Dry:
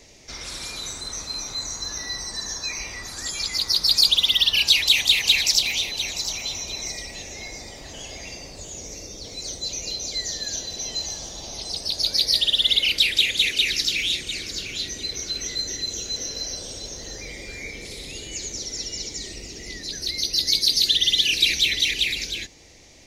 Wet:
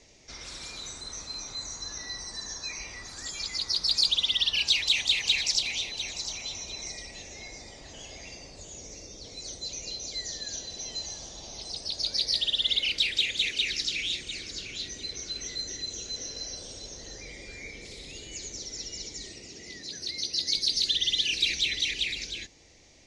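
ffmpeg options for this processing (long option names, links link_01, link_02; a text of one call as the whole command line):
ffmpeg -i in.wav -filter_complex "[0:a]asettb=1/sr,asplit=3[link_01][link_02][link_03];[link_01]atrim=end=19.304[link_04];[link_02]atrim=start=19.3:end=20.57,asetpts=PTS-STARTPTS,afade=type=in:duration=0.004:curve=qsin,afade=type=out:start_time=1.266:duration=0.004:curve=qsin,highpass=94[link_05];[link_03]atrim=start=20.566[link_06];[link_04][link_05]acrossfade=duration=0.004:curve1=hsin:curve2=qsin[link_07];[link_07][link_06]acrossfade=duration=0.004:curve1=qsin:curve2=hsin,lowpass=frequency=8500:width=0.5412,lowpass=frequency=8500:width=1.3066,volume=-7dB" out.wav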